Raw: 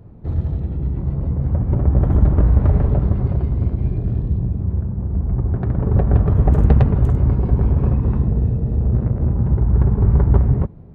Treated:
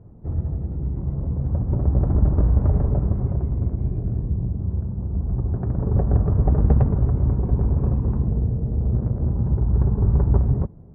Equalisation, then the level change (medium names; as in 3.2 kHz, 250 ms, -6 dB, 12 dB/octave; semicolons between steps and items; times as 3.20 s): low-pass 1.2 kHz 12 dB/octave; -4.0 dB